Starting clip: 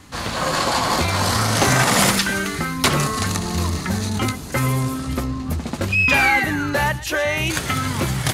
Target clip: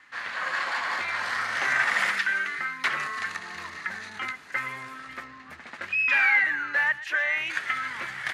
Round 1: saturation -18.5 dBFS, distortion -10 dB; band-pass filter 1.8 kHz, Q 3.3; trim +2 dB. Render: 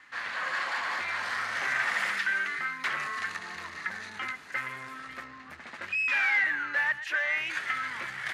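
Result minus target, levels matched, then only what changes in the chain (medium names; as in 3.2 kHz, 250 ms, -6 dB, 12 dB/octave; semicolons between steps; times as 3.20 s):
saturation: distortion +13 dB
change: saturation -7.5 dBFS, distortion -23 dB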